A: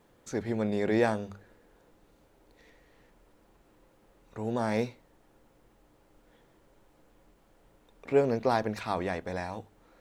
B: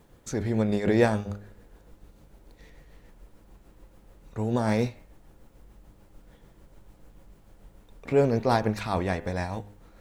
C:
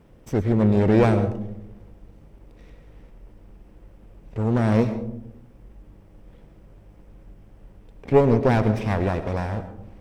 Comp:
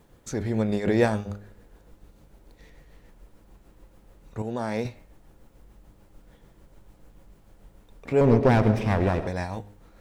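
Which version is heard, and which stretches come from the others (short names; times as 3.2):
B
4.42–4.85 from A
8.21–9.27 from C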